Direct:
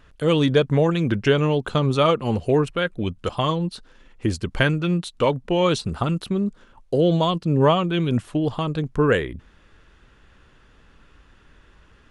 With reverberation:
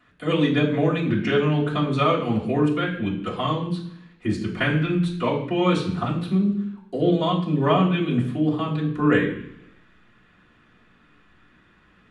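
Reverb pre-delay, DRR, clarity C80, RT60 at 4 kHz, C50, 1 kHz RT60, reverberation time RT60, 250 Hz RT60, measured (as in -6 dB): 3 ms, -9.5 dB, 10.5 dB, 1.0 s, 8.0 dB, 0.75 s, 0.70 s, 0.90 s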